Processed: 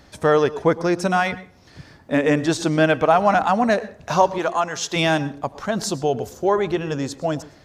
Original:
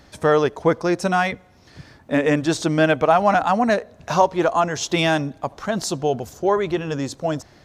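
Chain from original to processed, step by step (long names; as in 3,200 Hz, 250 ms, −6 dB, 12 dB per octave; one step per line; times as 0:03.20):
0:04.38–0:04.96: low-shelf EQ 490 Hz −9.5 dB
convolution reverb RT60 0.35 s, pre-delay 102 ms, DRR 17 dB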